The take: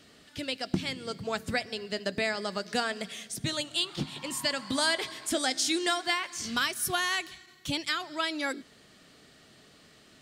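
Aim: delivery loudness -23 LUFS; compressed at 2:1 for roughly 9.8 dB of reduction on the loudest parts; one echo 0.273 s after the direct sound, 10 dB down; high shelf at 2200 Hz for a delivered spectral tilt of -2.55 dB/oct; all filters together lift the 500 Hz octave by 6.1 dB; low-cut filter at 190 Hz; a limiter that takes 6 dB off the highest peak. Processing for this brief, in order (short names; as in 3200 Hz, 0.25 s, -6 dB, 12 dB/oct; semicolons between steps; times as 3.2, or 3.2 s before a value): HPF 190 Hz; bell 500 Hz +8.5 dB; high shelf 2200 Hz -3 dB; compressor 2:1, threshold -40 dBFS; limiter -28 dBFS; echo 0.273 s -10 dB; gain +16 dB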